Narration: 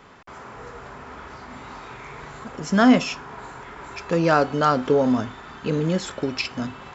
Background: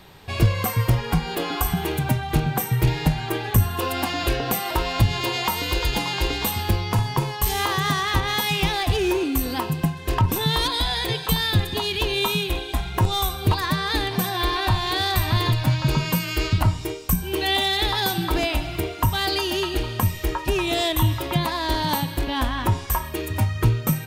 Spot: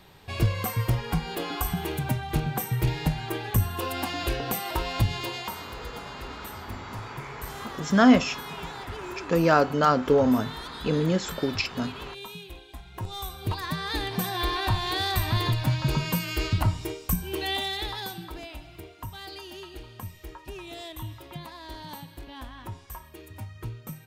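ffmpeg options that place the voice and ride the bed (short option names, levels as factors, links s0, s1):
-filter_complex "[0:a]adelay=5200,volume=0.841[s0];[1:a]volume=2.51,afade=t=out:st=5.06:d=0.65:silence=0.237137,afade=t=in:st=12.84:d=1.49:silence=0.211349,afade=t=out:st=17.05:d=1.31:silence=0.223872[s1];[s0][s1]amix=inputs=2:normalize=0"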